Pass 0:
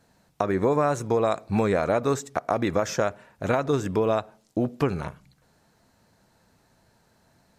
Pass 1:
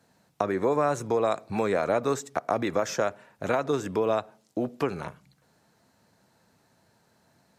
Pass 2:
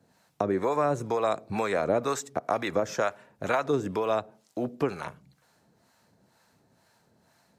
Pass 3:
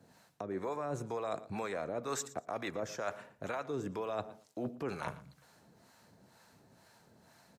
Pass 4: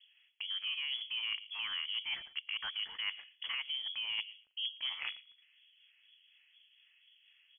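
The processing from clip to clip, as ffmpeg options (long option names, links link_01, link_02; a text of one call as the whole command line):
ffmpeg -i in.wav -filter_complex "[0:a]highpass=100,acrossover=split=270[link_01][link_02];[link_01]alimiter=level_in=4dB:limit=-24dB:level=0:latency=1:release=467,volume=-4dB[link_03];[link_03][link_02]amix=inputs=2:normalize=0,volume=-1.5dB" out.wav
ffmpeg -i in.wav -filter_complex "[0:a]acrossover=split=640[link_01][link_02];[link_01]aeval=exprs='val(0)*(1-0.7/2+0.7/2*cos(2*PI*2.1*n/s))':channel_layout=same[link_03];[link_02]aeval=exprs='val(0)*(1-0.7/2-0.7/2*cos(2*PI*2.1*n/s))':channel_layout=same[link_04];[link_03][link_04]amix=inputs=2:normalize=0,volume=3dB" out.wav
ffmpeg -i in.wav -af "alimiter=limit=-18.5dB:level=0:latency=1:release=203,areverse,acompressor=threshold=-37dB:ratio=6,areverse,aecho=1:1:116|232:0.126|0.0214,volume=2dB" out.wav
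ffmpeg -i in.wav -filter_complex "[0:a]acrossover=split=280|1500[link_01][link_02][link_03];[link_01]tremolo=f=4.1:d=0.77[link_04];[link_03]aeval=exprs='val(0)*gte(abs(val(0)),0.00211)':channel_layout=same[link_05];[link_04][link_02][link_05]amix=inputs=3:normalize=0,lowpass=frequency=3000:width_type=q:width=0.5098,lowpass=frequency=3000:width_type=q:width=0.6013,lowpass=frequency=3000:width_type=q:width=0.9,lowpass=frequency=3000:width_type=q:width=2.563,afreqshift=-3500" out.wav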